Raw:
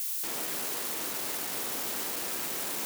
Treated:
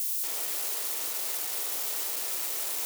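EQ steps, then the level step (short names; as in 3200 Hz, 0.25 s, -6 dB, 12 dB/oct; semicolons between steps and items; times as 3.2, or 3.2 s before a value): Bessel high-pass 580 Hz, order 4; bell 1300 Hz -6 dB 2.9 oct; notch 1600 Hz, Q 24; +3.0 dB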